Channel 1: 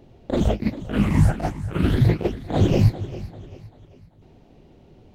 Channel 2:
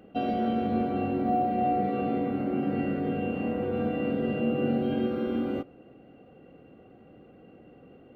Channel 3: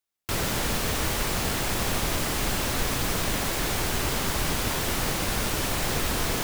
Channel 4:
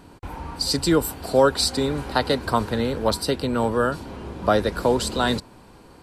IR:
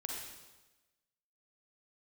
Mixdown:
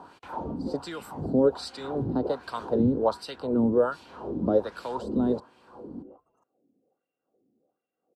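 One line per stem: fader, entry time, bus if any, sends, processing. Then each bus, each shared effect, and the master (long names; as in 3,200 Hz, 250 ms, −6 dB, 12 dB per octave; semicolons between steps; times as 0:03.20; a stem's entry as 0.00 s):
−2.5 dB, 0.00 s, no send, expander for the loud parts 1.5 to 1, over −33 dBFS
−13.5 dB, 0.55 s, no send, no processing
−18.5 dB, 0.00 s, no send, flat-topped bell 2,800 Hz −11 dB; gate on every frequency bin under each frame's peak −15 dB strong
+3.0 dB, 0.00 s, no send, low-shelf EQ 150 Hz +8.5 dB; multiband upward and downward compressor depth 40%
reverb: not used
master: parametric band 2,100 Hz −14 dB 0.87 octaves; auto-filter band-pass sine 1.3 Hz 240–2,400 Hz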